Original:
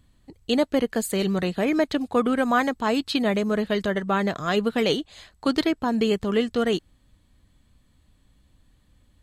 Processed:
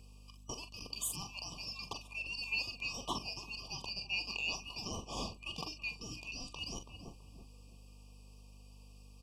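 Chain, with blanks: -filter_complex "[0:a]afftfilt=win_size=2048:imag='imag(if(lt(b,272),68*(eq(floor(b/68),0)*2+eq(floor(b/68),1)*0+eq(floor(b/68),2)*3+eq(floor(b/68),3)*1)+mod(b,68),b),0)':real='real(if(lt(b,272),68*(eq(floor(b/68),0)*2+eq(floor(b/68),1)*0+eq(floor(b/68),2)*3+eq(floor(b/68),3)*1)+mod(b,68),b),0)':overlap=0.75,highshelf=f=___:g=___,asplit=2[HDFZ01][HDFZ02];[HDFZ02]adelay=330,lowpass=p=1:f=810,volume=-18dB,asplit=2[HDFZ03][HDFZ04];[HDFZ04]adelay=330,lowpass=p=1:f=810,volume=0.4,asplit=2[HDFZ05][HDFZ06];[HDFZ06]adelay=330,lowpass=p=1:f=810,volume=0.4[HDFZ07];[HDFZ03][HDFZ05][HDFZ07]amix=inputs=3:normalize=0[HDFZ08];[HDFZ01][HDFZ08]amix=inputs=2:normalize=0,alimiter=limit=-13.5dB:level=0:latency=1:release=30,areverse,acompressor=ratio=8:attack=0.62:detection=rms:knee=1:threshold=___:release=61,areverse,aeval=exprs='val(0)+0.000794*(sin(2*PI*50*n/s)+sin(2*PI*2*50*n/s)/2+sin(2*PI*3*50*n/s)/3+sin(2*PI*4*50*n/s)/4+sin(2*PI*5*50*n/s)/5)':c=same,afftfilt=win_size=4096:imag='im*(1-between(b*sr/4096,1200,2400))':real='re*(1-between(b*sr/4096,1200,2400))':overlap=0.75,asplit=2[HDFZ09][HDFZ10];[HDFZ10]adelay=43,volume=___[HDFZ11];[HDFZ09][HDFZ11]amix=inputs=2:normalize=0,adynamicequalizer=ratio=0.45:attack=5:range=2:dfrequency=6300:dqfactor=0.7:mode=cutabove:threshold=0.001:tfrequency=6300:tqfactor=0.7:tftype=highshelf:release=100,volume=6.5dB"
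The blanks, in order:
12000, -5, -34dB, -9dB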